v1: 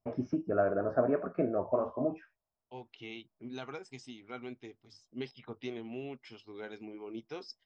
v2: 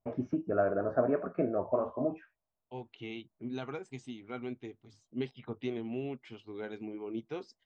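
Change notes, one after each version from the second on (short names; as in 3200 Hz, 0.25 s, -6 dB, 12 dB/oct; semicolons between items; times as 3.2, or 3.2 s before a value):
second voice: add low shelf 460 Hz +6.5 dB; master: add bell 5200 Hz -14.5 dB 0.22 oct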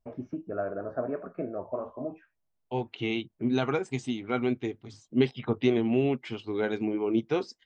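first voice -3.5 dB; second voice +12.0 dB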